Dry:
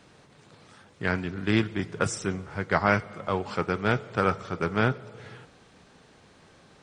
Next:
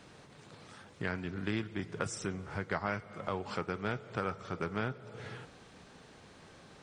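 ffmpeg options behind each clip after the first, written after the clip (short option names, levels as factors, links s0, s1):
-af "acompressor=threshold=0.0158:ratio=2.5"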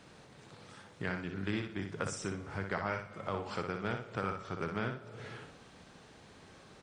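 -af "aecho=1:1:61|122|183:0.501|0.135|0.0365,volume=0.841"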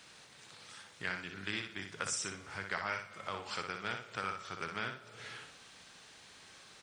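-af "tiltshelf=f=1100:g=-9,volume=0.841"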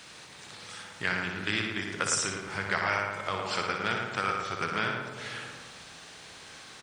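-filter_complex "[0:a]asplit=2[s0][s1];[s1]adelay=110,lowpass=f=1800:p=1,volume=0.708,asplit=2[s2][s3];[s3]adelay=110,lowpass=f=1800:p=1,volume=0.55,asplit=2[s4][s5];[s5]adelay=110,lowpass=f=1800:p=1,volume=0.55,asplit=2[s6][s7];[s7]adelay=110,lowpass=f=1800:p=1,volume=0.55,asplit=2[s8][s9];[s9]adelay=110,lowpass=f=1800:p=1,volume=0.55,asplit=2[s10][s11];[s11]adelay=110,lowpass=f=1800:p=1,volume=0.55,asplit=2[s12][s13];[s13]adelay=110,lowpass=f=1800:p=1,volume=0.55,asplit=2[s14][s15];[s15]adelay=110,lowpass=f=1800:p=1,volume=0.55[s16];[s0][s2][s4][s6][s8][s10][s12][s14][s16]amix=inputs=9:normalize=0,volume=2.51"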